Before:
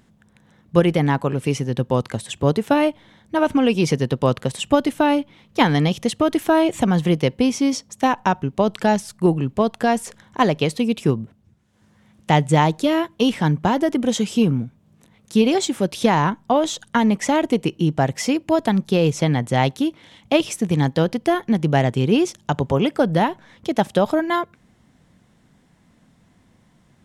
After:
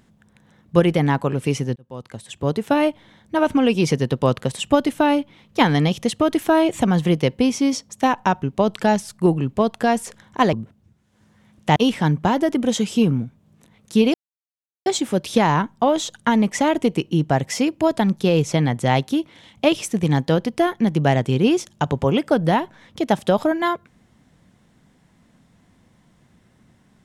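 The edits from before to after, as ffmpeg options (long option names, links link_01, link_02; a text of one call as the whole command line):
ffmpeg -i in.wav -filter_complex "[0:a]asplit=5[link_01][link_02][link_03][link_04][link_05];[link_01]atrim=end=1.76,asetpts=PTS-STARTPTS,afade=type=out:start_time=1.756:duration=0.004:curve=hsin[link_06];[link_02]atrim=start=1.76:end=10.532,asetpts=PTS-STARTPTS,afade=type=in:duration=1.11[link_07];[link_03]atrim=start=11.138:end=12.372[link_08];[link_04]atrim=start=13.158:end=15.54,asetpts=PTS-STARTPTS,afade=type=out:start_time=2.378:duration=0.004:curve=hsin,apad=pad_dur=0.72[link_09];[link_05]atrim=start=15.54,asetpts=PTS-STARTPTS,afade=type=in:duration=0.004:curve=hsin[link_10];[link_06][link_07]concat=n=2:v=0:a=1[link_11];[link_11][link_08]acrossfade=duration=0.004:curve1=hsin:curve2=hsin[link_12];[link_09][link_10]concat=n=2:v=0:a=1[link_13];[link_12][link_13]acrossfade=duration=0.004:curve1=hsin:curve2=hsin" out.wav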